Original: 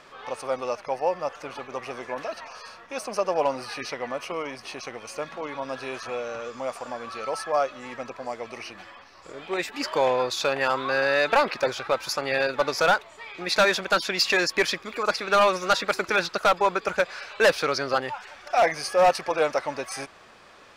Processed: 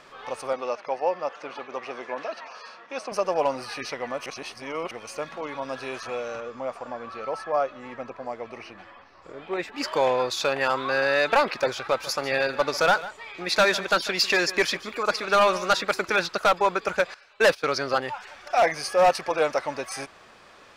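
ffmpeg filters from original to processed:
-filter_complex "[0:a]asettb=1/sr,asplit=3[a][b][c];[a]atrim=end=0.534[d];[b]atrim=start=0.53:end=3.12,asetpts=PTS-STARTPTS,afade=t=in:d=0.004:c=qsin,afade=t=out:st=2.586:d=0.004:c=qsin,highpass=220,lowpass=5.1k[e];[c]atrim=start=3.116[f];[d][e]acrossfade=d=0.004:c1=hsin:c2=qsin[g];[g][f]acrossfade=d=0.004:c1=qsin:c2=hsin,asettb=1/sr,asplit=3[h][i][j];[h]atrim=end=6.404[k];[i]atrim=start=6.4:end=9.78,asetpts=PTS-STARTPTS,afade=t=in:d=0.004:c=qsin,afade=t=out:st=3.376:d=0.004:c=qsin,lowpass=f=1.8k:p=1[l];[j]atrim=start=9.776[m];[k][l]acrossfade=d=0.004:c1=hsin:c2=qsin[n];[n][m]acrossfade=d=0.004:c1=qsin:c2=hsin,asettb=1/sr,asplit=3[o][p][q];[o]atrim=end=11.744[r];[p]atrim=start=11.74:end=15.82,asetpts=PTS-STARTPTS,afade=t=in:d=0.004:c=qsin,afade=t=out:st=4.076:d=0.004:c=qsin,aecho=1:1:147:0.158,atrim=end_sample=179928[s];[q]atrim=start=15.816[t];[r][s]acrossfade=d=0.004:c1=hsin:c2=qsin[u];[u][t]acrossfade=d=0.004:c1=qsin:c2=hsin,asettb=1/sr,asplit=3[v][w][x];[v]atrim=end=17.144[y];[w]atrim=start=17.14:end=17.76,asetpts=PTS-STARTPTS,afade=t=in:d=0.004:c=qsin,afade=t=out:st=0.616:d=0.004:c=qsin,agate=range=-16dB:threshold=-29dB:ratio=16:release=100:detection=peak[z];[x]atrim=start=17.756[aa];[y][z]acrossfade=d=0.004:c1=hsin:c2=qsin[ab];[ab][aa]acrossfade=d=0.004:c1=qsin:c2=hsin,asplit=3[ac][ad][ae];[ac]atrim=end=4.262[af];[ad]atrim=start=4.258:end=4.912,asetpts=PTS-STARTPTS,areverse[ag];[ae]atrim=start=4.908[ah];[af][ag]acrossfade=d=0.004:c1=hsin:c2=hsin[ai];[ai][ah]acrossfade=d=0.004:c1=hsin:c2=hsin"

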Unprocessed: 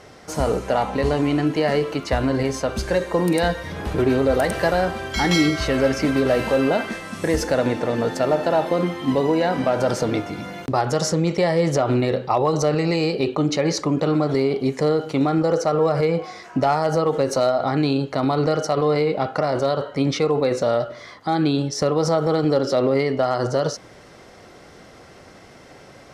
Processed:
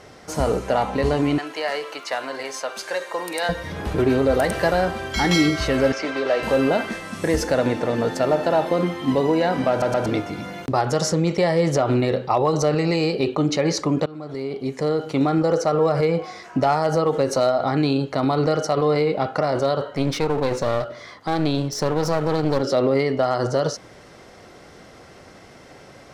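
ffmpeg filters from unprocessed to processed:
-filter_complex "[0:a]asettb=1/sr,asplit=3[a][b][c];[a]atrim=end=1.384[d];[b]atrim=start=1.38:end=3.49,asetpts=PTS-STARTPTS,afade=t=in:d=0.004:c=qsin,afade=t=out:st=2.106:d=0.004:c=qsin,highpass=710[e];[c]atrim=start=3.486[f];[d][e]acrossfade=d=0.004:c1=hsin:c2=qsin[g];[g][f]acrossfade=d=0.004:c1=qsin:c2=hsin,asettb=1/sr,asplit=3[h][i][j];[h]atrim=end=5.924[k];[i]atrim=start=5.92:end=6.43,asetpts=PTS-STARTPTS,afade=t=in:d=0.004:c=qsin,afade=t=out:st=0.506:d=0.004:c=qsin,acrossover=split=360 6700:gain=0.1 1 0.112[l][m][n];[l][m][n]amix=inputs=3:normalize=0[o];[j]atrim=start=6.426[p];[k][o]acrossfade=d=0.004:c1=hsin:c2=qsin[q];[q][p]acrossfade=d=0.004:c1=qsin:c2=hsin,asplit=3[r][s][t];[r]afade=t=out:st=19.88:d=0.02[u];[s]aeval=exprs='clip(val(0),-1,0.0447)':c=same,afade=t=in:st=19.88:d=0.02,afade=t=out:st=22.61:d=0.02[v];[t]afade=t=in:st=22.61:d=0.02[w];[u][v][w]amix=inputs=3:normalize=0,asplit=5[x][y][z][aa][ab];[x]atrim=end=9.822[ac];[y]atrim=start=9.698:end=9.822[ad];[z]atrim=start=9.698:end=9.822[ae];[aa]atrim=start=10.058:end=14.06,asetpts=PTS-STARTPTS,afade=t=out:st=3.998:d=0.004:c=hsin:silence=0.0749894[af];[ab]atrim=start=14.06,asetpts=PTS-STARTPTS,afade=t=in:d=1.15:silence=0.0749894[ag];[ac][ad]acrossfade=d=0.004:c1=hsin:c2=hsin[ah];[ah][ae]acrossfade=d=0.004:c1=hsin:c2=hsin[ai];[af][ag]concat=n=2:v=0:a=1[aj];[ai][aj]acrossfade=d=0.004:c1=hsin:c2=hsin"

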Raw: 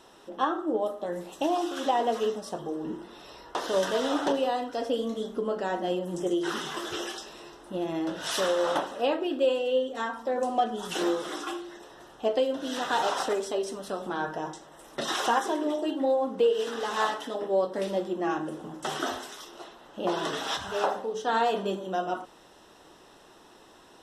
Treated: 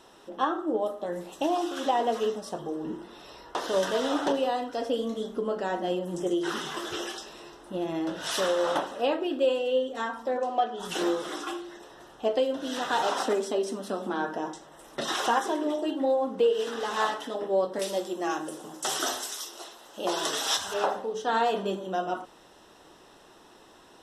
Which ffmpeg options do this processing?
-filter_complex "[0:a]asplit=3[a][b][c];[a]afade=t=out:st=10.37:d=0.02[d];[b]highpass=350,lowpass=4.7k,afade=t=in:st=10.37:d=0.02,afade=t=out:st=10.79:d=0.02[e];[c]afade=t=in:st=10.79:d=0.02[f];[d][e][f]amix=inputs=3:normalize=0,asettb=1/sr,asplit=3[g][h][i];[g]atrim=end=13.084[j];[h]atrim=start=13.08:end=14.54,asetpts=PTS-STARTPTS,afade=t=in:d=0.004:c=qsin,afade=t=out:st=1.456:d=0.004:c=qsin,lowshelf=f=160:t=q:w=3:g=-10.5[k];[i]atrim=start=14.536[l];[j][k]acrossfade=d=0.004:c1=hsin:c2=qsin[m];[m][l]acrossfade=d=0.004:c1=qsin:c2=hsin,asettb=1/sr,asplit=3[n][o][p];[n]atrim=end=17.794[q];[o]atrim=start=17.79:end=20.74,asetpts=PTS-STARTPTS,afade=t=in:d=0.004:c=qsin,afade=t=out:st=2.946:d=0.004:c=qsin,bass=f=250:g=-10,treble=f=4k:g=13[r];[p]atrim=start=20.736[s];[q][r]acrossfade=d=0.004:c1=hsin:c2=qsin[t];[t][s]acrossfade=d=0.004:c1=qsin:c2=hsin"

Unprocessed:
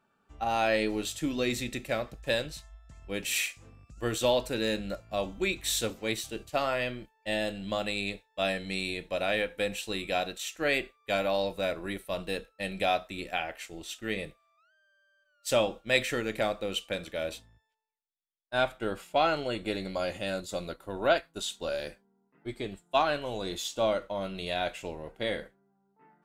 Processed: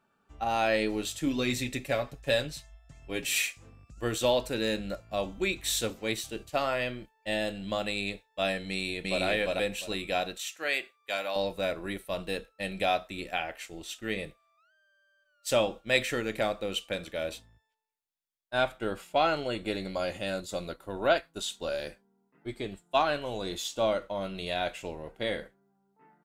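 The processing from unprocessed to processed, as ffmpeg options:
-filter_complex "[0:a]asettb=1/sr,asplit=3[a][b][c];[a]atrim=end=1.264[d];[b]atrim=start=1.26:end=3.5,asetpts=PTS-STARTPTS,afade=t=in:d=0.004:c=qsin,afade=t=out:st=2.236:d=0.004:c=qsin,aecho=1:1:7.2:0.58,atrim=end_sample=98784[e];[c]atrim=start=3.496[f];[d][e]acrossfade=d=0.004:c1=hsin:c2=qsin[g];[g][f]acrossfade=d=0.004:c1=qsin:c2=hsin,asplit=2[h][i];[i]afade=t=in:st=8.69:d=0.01,afade=t=out:st=9.24:d=0.01,aecho=0:1:350|700|1050:1|0.2|0.04[j];[h][j]amix=inputs=2:normalize=0,asettb=1/sr,asplit=3[k][l][m];[k]atrim=end=10.414[n];[l]atrim=start=10.41:end=11.36,asetpts=PTS-STARTPTS,afade=t=in:d=0.004:c=qsin,afade=t=out:st=0.946:d=0.004:c=qsin,highpass=f=960:p=1[o];[m]atrim=start=11.356[p];[n][o]acrossfade=d=0.004:c1=hsin:c2=qsin[q];[q][p]acrossfade=d=0.004:c1=qsin:c2=hsin"

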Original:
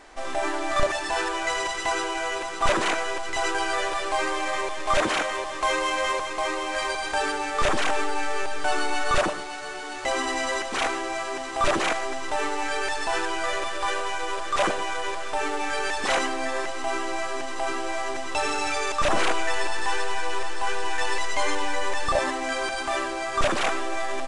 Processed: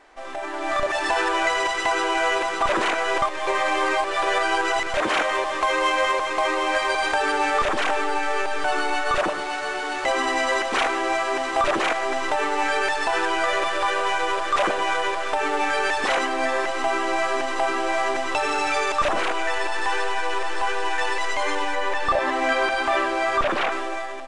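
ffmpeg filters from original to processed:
-filter_complex "[0:a]asettb=1/sr,asplit=3[a][b][c];[a]atrim=end=21.754[d];[b]atrim=start=21.75:end=23.72,asetpts=PTS-STARTPTS,afade=t=in:d=0.004:c=qsin,afade=t=out:st=1.966:d=0.004:c=qsin,acrossover=split=4400[e][f];[f]acompressor=threshold=-45dB:ratio=4:attack=1:release=60[g];[e][g]amix=inputs=2:normalize=0[h];[c]atrim=start=23.716[i];[d][h]acrossfade=d=0.004:c1=hsin:c2=qsin[j];[j][i]acrossfade=d=0.004:c1=qsin:c2=hsin,asplit=3[k][l][m];[k]atrim=end=3.222[n];[l]atrim=start=3.218:end=4.942,asetpts=PTS-STARTPTS,areverse[o];[m]atrim=start=4.938[p];[n][o]acrossfade=d=0.004:c1=hsin:c2=hsin[q];[q][p]acrossfade=d=0.004:c1=hsin:c2=hsin,alimiter=limit=-19dB:level=0:latency=1:release=269,dynaudnorm=f=140:g=9:m=11dB,bass=f=250:g=-7,treble=f=4k:g=-7,volume=-3dB"

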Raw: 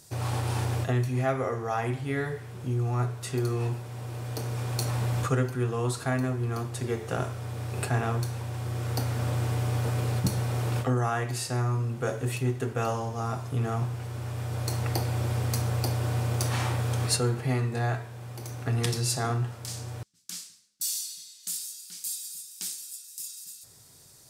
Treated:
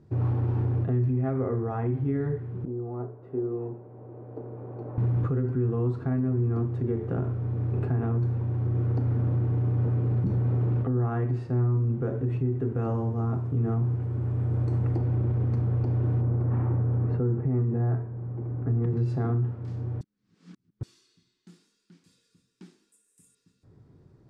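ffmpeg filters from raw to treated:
-filter_complex "[0:a]asettb=1/sr,asplit=3[a][b][c];[a]atrim=end=2.654[d];[b]atrim=start=2.65:end=4.98,asetpts=PTS-STARTPTS,afade=t=in:d=0.004:c=qsin,afade=t=out:st=2.326:d=0.004:c=qsin,bandpass=f=590:t=q:w=1.4[e];[c]atrim=start=4.976[f];[d][e]acrossfade=d=0.004:c1=hsin:c2=qsin[g];[g][f]acrossfade=d=0.004:c1=qsin:c2=hsin,asettb=1/sr,asplit=3[h][i][j];[h]atrim=end=12.634[k];[i]atrim=start=12.63:end=14.97,asetpts=PTS-STARTPTS,afade=t=in:d=0.004:c=qsin,afade=t=out:st=2.336:d=0.004:c=qsin,equalizer=f=8.3k:t=o:w=0.58:g=12[l];[j]atrim=start=14.966[m];[k][l]acrossfade=d=0.004:c1=hsin:c2=qsin[n];[n][m]acrossfade=d=0.004:c1=qsin:c2=hsin,asettb=1/sr,asplit=3[o][p][q];[o]atrim=end=16.214[r];[p]atrim=start=16.21:end=18.97,asetpts=PTS-STARTPTS,afade=t=in:d=0.004:c=qsin,afade=t=out:st=2.756:d=0.004:c=qsin,lowpass=1.6k[s];[q]atrim=start=18.966[t];[r][s]acrossfade=d=0.004:c1=hsin:c2=qsin[u];[u][t]acrossfade=d=0.004:c1=qsin:c2=hsin,asettb=1/sr,asplit=3[v][w][x];[v]atrim=end=22.924[y];[w]atrim=start=22.92:end=23.35,asetpts=PTS-STARTPTS,afade=t=in:d=0.004:c=qsin,afade=t=out:st=0.426:d=0.004:c=qsin,highshelf=f=6.6k:t=q:w=3:g=12[z];[x]atrim=start=23.346[aa];[y][z]acrossfade=d=0.004:c1=hsin:c2=qsin[ab];[ab][aa]acrossfade=d=0.004:c1=qsin:c2=hsin,asplit=3[ac][ad][ae];[ac]atrim=end=20.012[af];[ad]atrim=start=20.008:end=20.832,asetpts=PTS-STARTPTS,areverse[ag];[ae]atrim=start=20.828[ah];[af][ag]acrossfade=d=0.004:c1=hsin:c2=hsin[ai];[ai][ah]acrossfade=d=0.004:c1=hsin:c2=hsin,lowpass=1.2k,lowshelf=f=460:t=q:w=1.5:g=8.5,alimiter=limit=-17dB:level=0:latency=1:release=49,volume=-2.5dB"

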